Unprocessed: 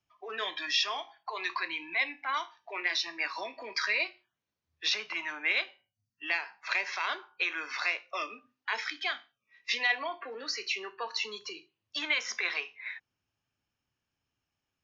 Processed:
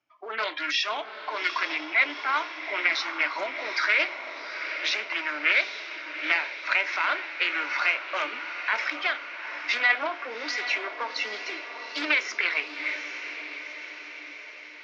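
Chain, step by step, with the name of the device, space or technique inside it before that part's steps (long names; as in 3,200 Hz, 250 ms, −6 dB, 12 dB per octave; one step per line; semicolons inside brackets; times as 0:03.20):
full-range speaker at full volume (highs frequency-modulated by the lows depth 0.31 ms; loudspeaker in its box 160–6,500 Hz, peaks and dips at 190 Hz −7 dB, 300 Hz +10 dB, 600 Hz +9 dB, 930 Hz +4 dB, 1,400 Hz +9 dB, 2,200 Hz +9 dB)
feedback delay with all-pass diffusion 812 ms, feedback 59%, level −9 dB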